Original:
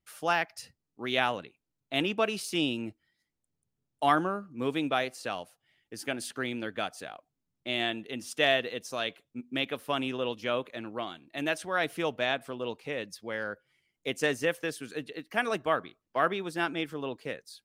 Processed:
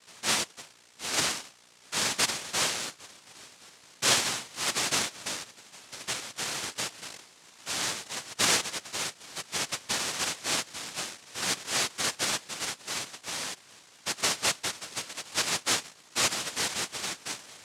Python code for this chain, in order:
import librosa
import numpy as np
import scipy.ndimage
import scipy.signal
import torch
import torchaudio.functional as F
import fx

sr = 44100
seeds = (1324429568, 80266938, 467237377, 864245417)

y = fx.add_hum(x, sr, base_hz=60, snr_db=21)
y = fx.echo_swing(y, sr, ms=1075, ratio=3, feedback_pct=31, wet_db=-23.5)
y = fx.noise_vocoder(y, sr, seeds[0], bands=1)